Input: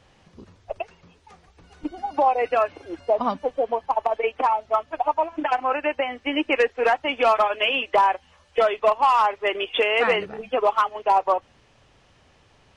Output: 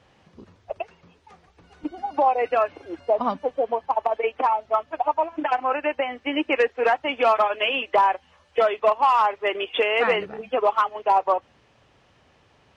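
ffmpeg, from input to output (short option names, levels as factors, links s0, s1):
-af "highpass=f=89:p=1,highshelf=f=5200:g=-8"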